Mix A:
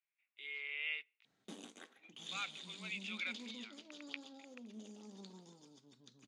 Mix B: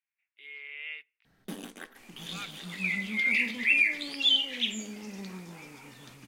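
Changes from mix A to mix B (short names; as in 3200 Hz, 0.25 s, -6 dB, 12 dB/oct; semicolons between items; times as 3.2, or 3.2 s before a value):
first sound +10.0 dB; second sound: unmuted; master: remove speaker cabinet 160–9300 Hz, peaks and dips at 170 Hz -4 dB, 1700 Hz -5 dB, 3700 Hz +5 dB, 6800 Hz +8 dB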